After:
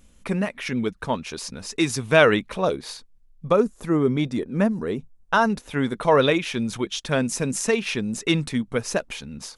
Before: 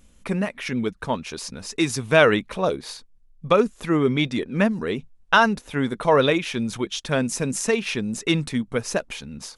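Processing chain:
0:03.49–0:05.50: parametric band 2,800 Hz −9.5 dB 1.8 octaves

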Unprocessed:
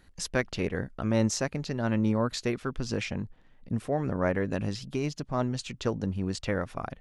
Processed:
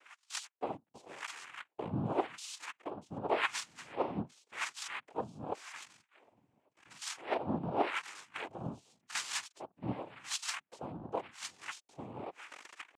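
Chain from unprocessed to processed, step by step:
spectral tilt +4.5 dB per octave
notch filter 2,400 Hz, Q 5.4
downward compressor 20 to 1, threshold −36 dBFS, peak gain reduction 20 dB
tempo change 0.54×
LFO wah 0.89 Hz 240–3,300 Hz, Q 11
cochlear-implant simulation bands 4
level +18 dB

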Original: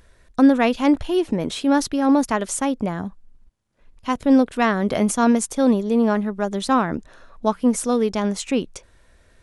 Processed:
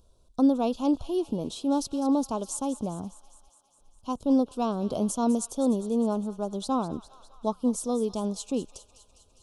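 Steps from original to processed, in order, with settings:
Butterworth band-reject 1,900 Hz, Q 0.81
on a send: delay with a high-pass on its return 203 ms, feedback 66%, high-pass 1,500 Hz, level −13 dB
on the sum: level −7.5 dB

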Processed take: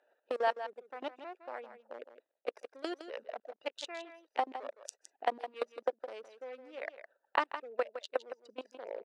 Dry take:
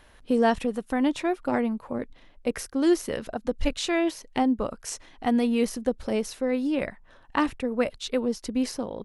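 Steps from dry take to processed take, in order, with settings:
adaptive Wiener filter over 41 samples
reverb reduction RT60 0.74 s
output level in coarse steps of 23 dB
high-frequency loss of the air 69 metres
downward compressor 6 to 1, threshold −33 dBFS, peak gain reduction 12 dB
high-pass filter 520 Hz 24 dB per octave
on a send: single-tap delay 162 ms −11 dB
on the sum: level +9 dB

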